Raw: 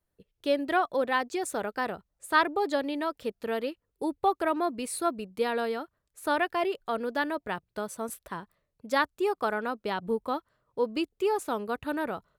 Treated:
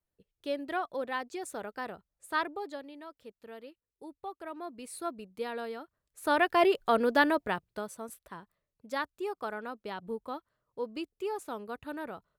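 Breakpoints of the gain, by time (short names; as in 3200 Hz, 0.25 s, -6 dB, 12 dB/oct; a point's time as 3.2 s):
2.44 s -7.5 dB
2.91 s -16 dB
4.35 s -16 dB
5.04 s -8 dB
5.8 s -8 dB
6.64 s +5 dB
7.29 s +5 dB
8.08 s -8 dB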